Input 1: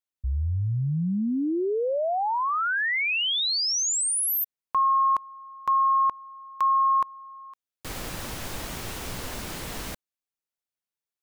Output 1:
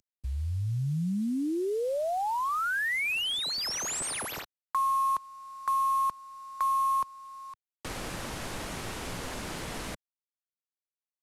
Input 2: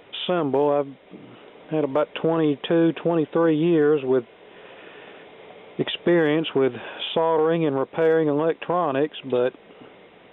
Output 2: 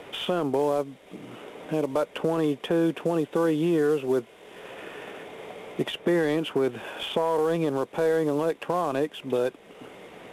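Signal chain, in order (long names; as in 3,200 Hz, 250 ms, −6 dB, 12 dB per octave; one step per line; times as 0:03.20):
variable-slope delta modulation 64 kbit/s
multiband upward and downward compressor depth 40%
level −4 dB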